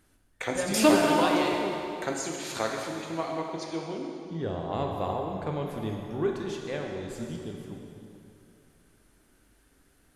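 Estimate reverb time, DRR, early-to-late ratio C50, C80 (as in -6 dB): 2.8 s, 0.0 dB, 2.0 dB, 3.0 dB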